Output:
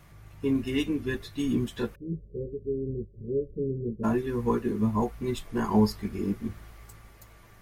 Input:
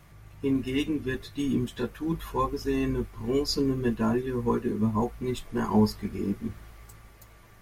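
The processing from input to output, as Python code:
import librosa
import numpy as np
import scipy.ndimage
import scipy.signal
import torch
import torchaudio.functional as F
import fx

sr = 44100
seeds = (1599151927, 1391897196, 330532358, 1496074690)

y = fx.cheby_ripple(x, sr, hz=580.0, ripple_db=9, at=(1.94, 4.03), fade=0.02)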